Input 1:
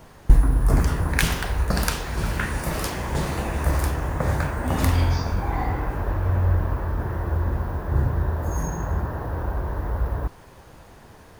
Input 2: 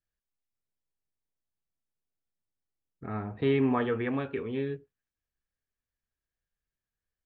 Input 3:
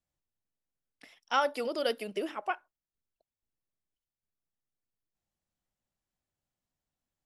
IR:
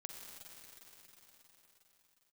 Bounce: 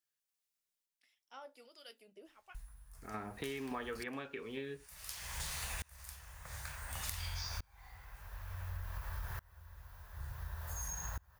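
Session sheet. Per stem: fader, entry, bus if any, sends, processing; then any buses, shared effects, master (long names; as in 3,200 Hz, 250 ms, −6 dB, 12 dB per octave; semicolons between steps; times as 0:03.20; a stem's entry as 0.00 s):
+1.5 dB, 2.25 s, no send, guitar amp tone stack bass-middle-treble 10-0-10; tremolo with a ramp in dB swelling 0.56 Hz, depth 29 dB; automatic ducking −18 dB, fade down 0.85 s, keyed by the second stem
−1.0 dB, 0.00 s, no send, high-pass filter 130 Hz; low-shelf EQ 460 Hz −6.5 dB; sample-and-hold tremolo
−19.0 dB, 0.00 s, no send, two-band tremolo in antiphase 1.4 Hz, depth 70%, crossover 1,100 Hz; flanger 1.6 Hz, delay 10 ms, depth 2.8 ms, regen −61%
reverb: not used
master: high-shelf EQ 2,200 Hz +9.5 dB; downward compressor 5 to 1, threshold −39 dBFS, peak gain reduction 13 dB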